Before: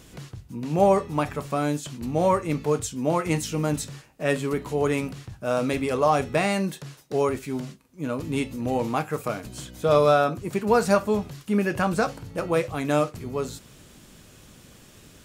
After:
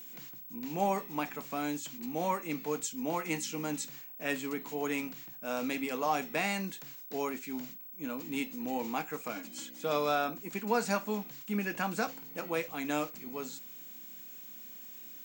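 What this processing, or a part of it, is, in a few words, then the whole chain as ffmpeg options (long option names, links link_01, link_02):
old television with a line whistle: -filter_complex "[0:a]highpass=frequency=210:width=0.5412,highpass=frequency=210:width=1.3066,equalizer=frequency=390:width_type=q:width=4:gain=-8,equalizer=frequency=580:width_type=q:width=4:gain=-8,equalizer=frequency=1200:width_type=q:width=4:gain=-5,equalizer=frequency=2300:width_type=q:width=4:gain=3,equalizer=frequency=7000:width_type=q:width=4:gain=4,lowpass=frequency=8700:width=0.5412,lowpass=frequency=8700:width=1.3066,aeval=exprs='val(0)+0.0112*sin(2*PI*15734*n/s)':channel_layout=same,asettb=1/sr,asplit=3[link_01][link_02][link_03];[link_01]atrim=end=9.354[link_04];[link_02]atrim=start=9.35:end=9.84,asetpts=PTS-STARTPTS,afade=type=in:duration=0.004:curve=qsin,afade=type=out:start_time=0.486:duration=0.004:curve=qsin,aecho=1:1:3.6:0.65,atrim=end_sample=21609[link_05];[link_03]atrim=start=9.836[link_06];[link_04][link_05]acrossfade=duration=0.004:curve1=hsin:curve2=qsin[link_07];[link_07][link_06]acrossfade=duration=0.004:curve1=qsin:curve2=hsin,volume=-6dB"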